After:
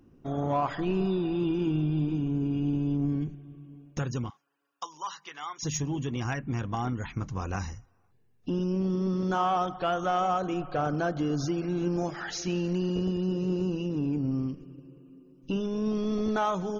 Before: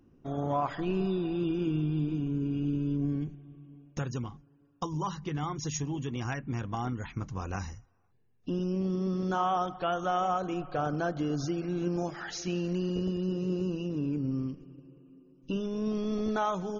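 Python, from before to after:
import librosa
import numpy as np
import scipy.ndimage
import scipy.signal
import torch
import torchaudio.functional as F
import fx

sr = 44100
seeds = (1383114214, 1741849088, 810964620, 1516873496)

p1 = fx.highpass(x, sr, hz=1100.0, slope=12, at=(4.3, 5.63))
p2 = 10.0 ** (-29.0 / 20.0) * np.tanh(p1 / 10.0 ** (-29.0 / 20.0))
y = p1 + F.gain(torch.from_numpy(p2), -6.5).numpy()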